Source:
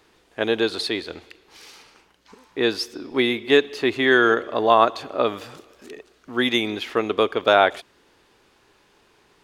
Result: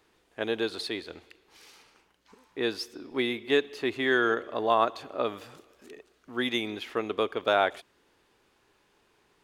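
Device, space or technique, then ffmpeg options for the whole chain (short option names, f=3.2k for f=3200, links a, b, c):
exciter from parts: -filter_complex "[0:a]asplit=2[a][b];[b]highpass=3.3k,asoftclip=type=tanh:threshold=-31.5dB,highpass=4.9k,volume=-11dB[c];[a][c]amix=inputs=2:normalize=0,volume=-8dB"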